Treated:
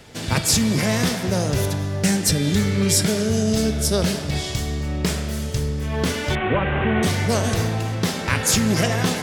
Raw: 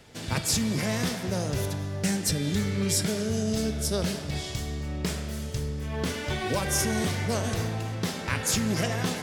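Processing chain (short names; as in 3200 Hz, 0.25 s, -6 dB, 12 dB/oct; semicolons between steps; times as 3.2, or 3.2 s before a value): 6.35–7.03 delta modulation 16 kbps, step -31.5 dBFS; gain +7.5 dB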